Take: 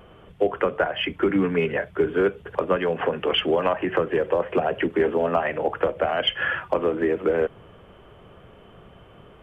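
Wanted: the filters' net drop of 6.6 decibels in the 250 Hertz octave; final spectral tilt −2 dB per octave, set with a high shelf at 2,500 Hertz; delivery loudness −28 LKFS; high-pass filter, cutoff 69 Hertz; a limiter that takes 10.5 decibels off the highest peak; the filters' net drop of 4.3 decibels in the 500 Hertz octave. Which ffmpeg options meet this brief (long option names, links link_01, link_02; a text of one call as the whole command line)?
ffmpeg -i in.wav -af "highpass=69,equalizer=frequency=250:width_type=o:gain=-8.5,equalizer=frequency=500:width_type=o:gain=-3,highshelf=frequency=2500:gain=5.5,volume=1dB,alimiter=limit=-17dB:level=0:latency=1" out.wav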